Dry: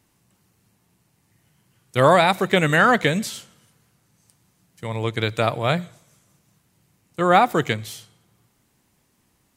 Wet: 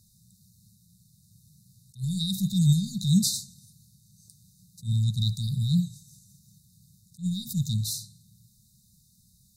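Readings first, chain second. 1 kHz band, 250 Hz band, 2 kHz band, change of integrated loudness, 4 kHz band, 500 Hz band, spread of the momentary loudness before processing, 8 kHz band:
under -40 dB, -2.0 dB, under -40 dB, -7.0 dB, -4.0 dB, under -40 dB, 16 LU, +4.0 dB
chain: dynamic EQ 150 Hz, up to +3 dB, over -39 dBFS, Q 5.4; limiter -13.5 dBFS, peak gain reduction 12.5 dB; sine folder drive 4 dB, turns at -5.5 dBFS; brick-wall FIR band-stop 220–3600 Hz; attack slew limiter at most 280 dB/s; gain -2 dB

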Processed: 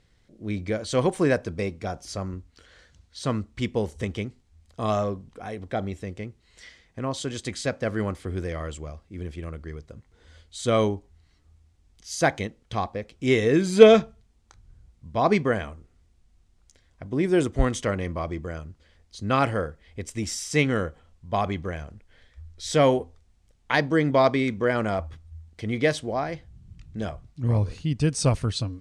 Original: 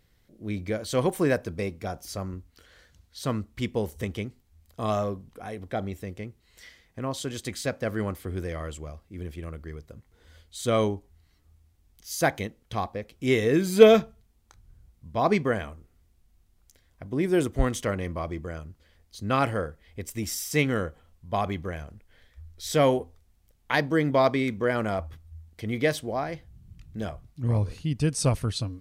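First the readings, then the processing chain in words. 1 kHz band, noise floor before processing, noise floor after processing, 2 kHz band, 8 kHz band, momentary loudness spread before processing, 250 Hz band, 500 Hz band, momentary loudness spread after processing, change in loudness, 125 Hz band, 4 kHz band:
+2.0 dB, -65 dBFS, -63 dBFS, +2.0 dB, +0.5 dB, 16 LU, +2.0 dB, +2.0 dB, 16 LU, +2.0 dB, +2.0 dB, +2.0 dB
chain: LPF 8800 Hz 24 dB/oct; gain +2 dB

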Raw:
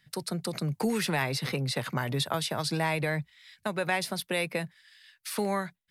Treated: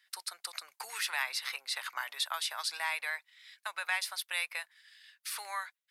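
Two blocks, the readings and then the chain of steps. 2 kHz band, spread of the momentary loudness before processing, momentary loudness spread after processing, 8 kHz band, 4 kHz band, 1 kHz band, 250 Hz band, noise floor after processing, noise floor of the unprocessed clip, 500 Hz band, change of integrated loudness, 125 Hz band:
-1.5 dB, 7 LU, 9 LU, -1.5 dB, -1.5 dB, -6.0 dB, under -40 dB, -85 dBFS, -71 dBFS, -21.5 dB, -5.0 dB, under -40 dB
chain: HPF 1000 Hz 24 dB/oct; gain -1.5 dB

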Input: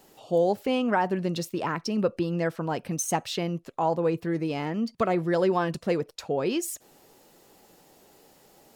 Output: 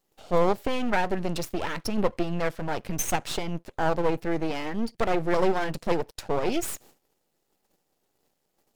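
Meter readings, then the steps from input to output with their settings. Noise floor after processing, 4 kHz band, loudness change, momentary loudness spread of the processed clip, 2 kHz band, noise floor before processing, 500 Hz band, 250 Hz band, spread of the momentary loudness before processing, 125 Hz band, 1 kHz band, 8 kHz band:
-76 dBFS, +0.5 dB, -0.5 dB, 7 LU, +2.0 dB, -59 dBFS, -1.0 dB, -2.0 dB, 6 LU, -2.0 dB, 0.0 dB, -0.5 dB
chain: gate -53 dBFS, range -20 dB; bell 1100 Hz -12.5 dB 0.25 oct; half-wave rectifier; gain +5 dB

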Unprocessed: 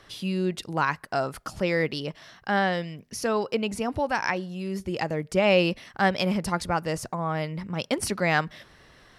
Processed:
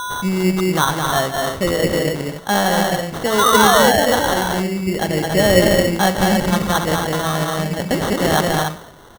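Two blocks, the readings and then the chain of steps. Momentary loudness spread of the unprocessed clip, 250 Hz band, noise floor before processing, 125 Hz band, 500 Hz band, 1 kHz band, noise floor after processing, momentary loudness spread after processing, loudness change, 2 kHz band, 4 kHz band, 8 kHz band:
9 LU, +10.0 dB, -56 dBFS, +10.0 dB, +10.0 dB, +11.0 dB, -37 dBFS, 9 LU, +10.0 dB, +8.5 dB, +13.0 dB, +15.5 dB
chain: in parallel at -7.5 dB: overloaded stage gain 23 dB; on the sum: painted sound fall, 3.38–3.91, 460–1500 Hz -19 dBFS; whine 5900 Hz -28 dBFS; de-hum 55.96 Hz, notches 33; on a send: tapped delay 0.157/0.214/0.284 s -10.5/-3.5/-6.5 dB; on the sum: sample-and-hold 18×; gain +5 dB

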